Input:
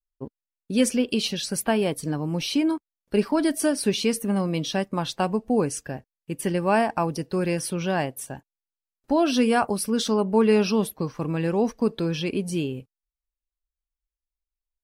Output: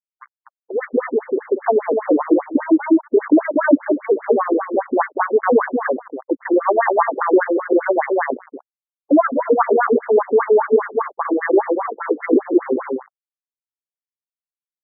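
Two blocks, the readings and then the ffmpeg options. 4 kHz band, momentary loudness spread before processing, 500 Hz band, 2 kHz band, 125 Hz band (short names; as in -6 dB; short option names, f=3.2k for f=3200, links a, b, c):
under -40 dB, 11 LU, +9.0 dB, +7.5 dB, under -20 dB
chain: -filter_complex "[0:a]aresample=16000,aresample=44100,bandreject=f=60:t=h:w=6,bandreject=f=120:t=h:w=6,bandreject=f=180:t=h:w=6,asplit=2[a][b];[b]adelay=238,lowpass=f=1.9k:p=1,volume=-5dB,asplit=2[c][d];[d]adelay=238,lowpass=f=1.9k:p=1,volume=0.18,asplit=2[e][f];[f]adelay=238,lowpass=f=1.9k:p=1,volume=0.18[g];[a][c][e][g]amix=inputs=4:normalize=0,acrossover=split=110[h][i];[i]dynaudnorm=f=210:g=11:m=12dB[j];[h][j]amix=inputs=2:normalize=0,highshelf=f=3.8k:g=4.5,aeval=exprs='sgn(val(0))*max(abs(val(0))-0.0335,0)':c=same,aemphasis=mode=production:type=50fm,alimiter=level_in=12dB:limit=-1dB:release=50:level=0:latency=1,afftfilt=real='re*between(b*sr/1024,330*pow(1600/330,0.5+0.5*sin(2*PI*5*pts/sr))/1.41,330*pow(1600/330,0.5+0.5*sin(2*PI*5*pts/sr))*1.41)':imag='im*between(b*sr/1024,330*pow(1600/330,0.5+0.5*sin(2*PI*5*pts/sr))/1.41,330*pow(1600/330,0.5+0.5*sin(2*PI*5*pts/sr))*1.41)':win_size=1024:overlap=0.75,volume=2dB"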